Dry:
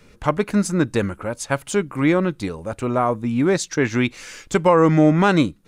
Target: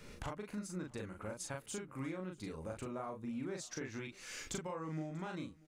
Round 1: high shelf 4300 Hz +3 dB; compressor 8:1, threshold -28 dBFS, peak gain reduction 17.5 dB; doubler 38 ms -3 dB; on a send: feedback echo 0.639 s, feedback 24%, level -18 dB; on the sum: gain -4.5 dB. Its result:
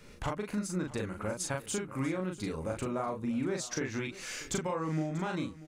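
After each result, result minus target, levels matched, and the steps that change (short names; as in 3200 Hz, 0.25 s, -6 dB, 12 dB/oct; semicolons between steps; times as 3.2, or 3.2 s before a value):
compressor: peak gain reduction -9 dB; echo-to-direct +6.5 dB
change: compressor 8:1, threshold -38 dBFS, peak gain reduction 26.5 dB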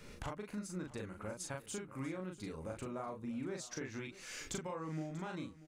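echo-to-direct +6.5 dB
change: feedback echo 0.639 s, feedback 24%, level -24.5 dB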